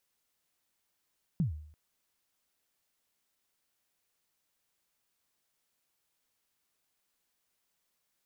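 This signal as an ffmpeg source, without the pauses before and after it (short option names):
-f lavfi -i "aevalsrc='0.0708*pow(10,-3*t/0.61)*sin(2*PI*(190*0.121/log(76/190)*(exp(log(76/190)*min(t,0.121)/0.121)-1)+76*max(t-0.121,0)))':d=0.34:s=44100"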